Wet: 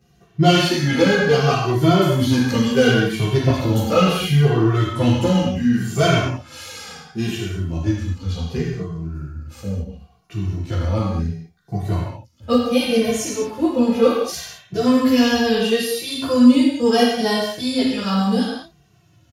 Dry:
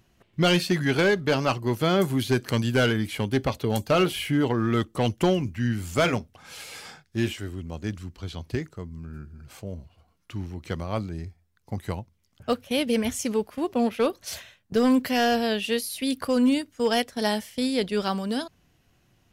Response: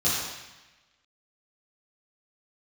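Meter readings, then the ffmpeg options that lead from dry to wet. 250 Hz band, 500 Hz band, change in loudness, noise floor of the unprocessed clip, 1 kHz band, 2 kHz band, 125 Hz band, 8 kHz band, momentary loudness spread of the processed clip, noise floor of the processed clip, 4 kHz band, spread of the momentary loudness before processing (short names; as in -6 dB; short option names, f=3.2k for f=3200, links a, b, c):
+8.0 dB, +6.5 dB, +7.0 dB, -66 dBFS, +6.0 dB, +5.0 dB, +9.5 dB, +6.0 dB, 14 LU, -56 dBFS, +6.5 dB, 17 LU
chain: -filter_complex "[1:a]atrim=start_sample=2205,afade=t=out:st=0.29:d=0.01,atrim=end_sample=13230[a];[0:a][a]afir=irnorm=-1:irlink=0,asplit=2[b][c];[c]adelay=2.1,afreqshift=-0.7[d];[b][d]amix=inputs=2:normalize=1,volume=-4dB"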